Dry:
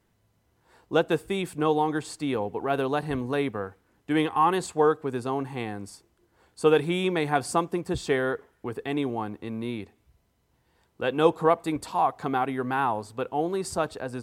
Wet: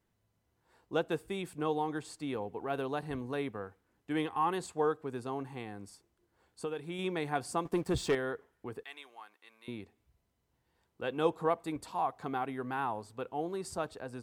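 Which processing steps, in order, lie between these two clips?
5.56–6.99 compressor 4:1, threshold -27 dBFS, peak gain reduction 10.5 dB; 7.65–8.15 sample leveller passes 2; 8.83–9.68 HPF 1400 Hz 12 dB/oct; gain -9 dB

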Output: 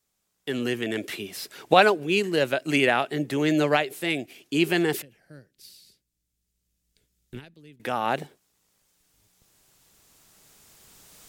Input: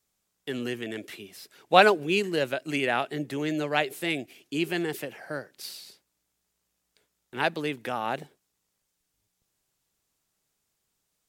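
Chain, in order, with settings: recorder AGC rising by 7 dB/s; 5.02–7.8 passive tone stack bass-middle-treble 10-0-1

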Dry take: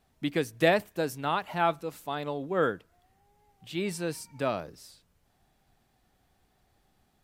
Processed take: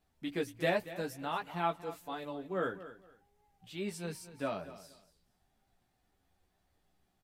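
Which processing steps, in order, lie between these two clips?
chorus voices 6, 0.44 Hz, delay 14 ms, depth 3.8 ms; on a send: feedback echo 0.233 s, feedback 22%, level -15 dB; on the sum: gain -4.5 dB

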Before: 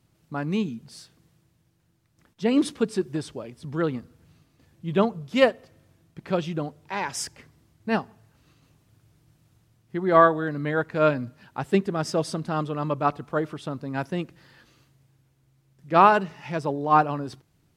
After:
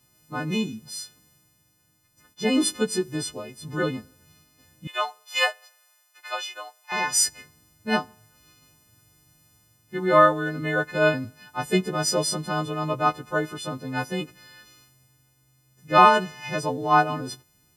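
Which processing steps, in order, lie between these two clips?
frequency quantiser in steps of 3 st; 4.87–6.92 HPF 750 Hz 24 dB/oct

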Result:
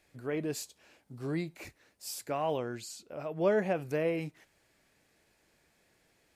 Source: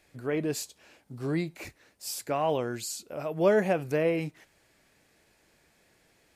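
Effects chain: 2.59–3.76 high shelf 8100 Hz -11 dB; gain -4.5 dB

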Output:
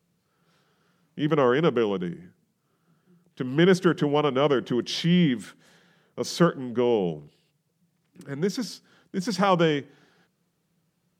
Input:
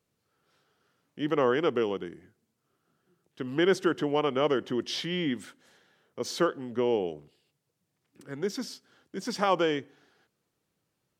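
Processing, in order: bell 170 Hz +14 dB 0.33 oct; gain +3.5 dB

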